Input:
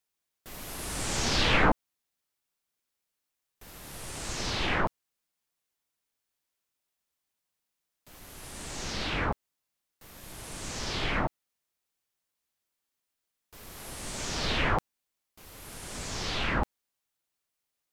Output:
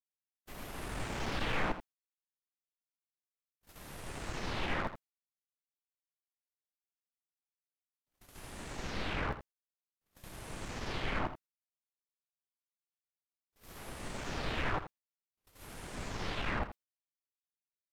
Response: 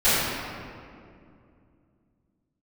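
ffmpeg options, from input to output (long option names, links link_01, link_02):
-filter_complex "[0:a]aeval=exprs='(tanh(35.5*val(0)+0.5)-tanh(0.5))/35.5':channel_layout=same,agate=range=-37dB:threshold=-48dB:ratio=16:detection=peak,acrossover=split=3000[link_01][link_02];[link_02]acompressor=threshold=-53dB:ratio=4:attack=1:release=60[link_03];[link_01][link_03]amix=inputs=2:normalize=0,asplit=2[link_04][link_05];[link_05]aecho=0:1:82:0.266[link_06];[link_04][link_06]amix=inputs=2:normalize=0"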